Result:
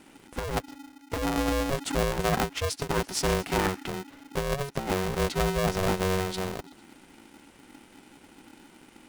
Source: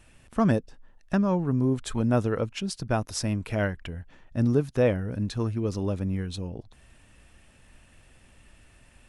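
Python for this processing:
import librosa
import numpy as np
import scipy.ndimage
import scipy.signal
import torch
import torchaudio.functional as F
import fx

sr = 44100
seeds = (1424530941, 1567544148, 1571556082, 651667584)

y = fx.lpc_monotone(x, sr, seeds[0], pitch_hz=220.0, order=10, at=(1.16, 1.71))
y = fx.over_compress(y, sr, threshold_db=-25.0, ratio=-0.5)
y = fx.echo_wet_highpass(y, sr, ms=113, feedback_pct=63, hz=2100.0, wet_db=-16.5)
y = y * np.sign(np.sin(2.0 * np.pi * 280.0 * np.arange(len(y)) / sr))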